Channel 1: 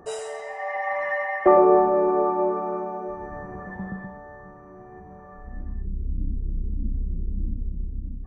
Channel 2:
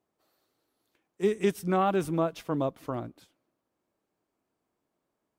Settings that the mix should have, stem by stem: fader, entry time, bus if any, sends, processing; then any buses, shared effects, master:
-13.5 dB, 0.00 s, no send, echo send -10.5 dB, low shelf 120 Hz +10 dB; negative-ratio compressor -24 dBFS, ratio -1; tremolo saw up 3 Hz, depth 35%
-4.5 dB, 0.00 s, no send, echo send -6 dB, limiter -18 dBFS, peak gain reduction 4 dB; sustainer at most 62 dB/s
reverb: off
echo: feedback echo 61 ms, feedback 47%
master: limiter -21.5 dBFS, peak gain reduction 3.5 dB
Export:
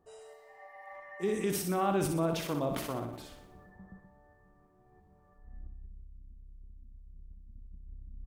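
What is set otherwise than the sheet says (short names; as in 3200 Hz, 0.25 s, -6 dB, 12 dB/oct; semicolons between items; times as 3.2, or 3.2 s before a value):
stem 1 -13.5 dB -> -24.5 dB; master: missing limiter -21.5 dBFS, peak gain reduction 3.5 dB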